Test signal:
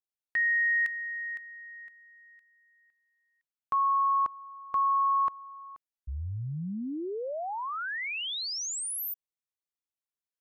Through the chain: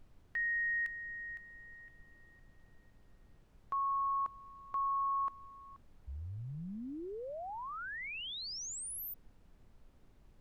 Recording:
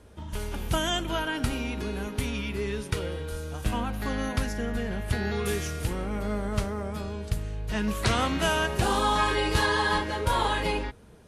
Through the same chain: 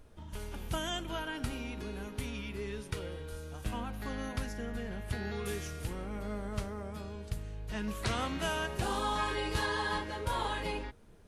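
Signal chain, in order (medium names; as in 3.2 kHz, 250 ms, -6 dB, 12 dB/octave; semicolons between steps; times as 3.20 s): added noise brown -51 dBFS; trim -8.5 dB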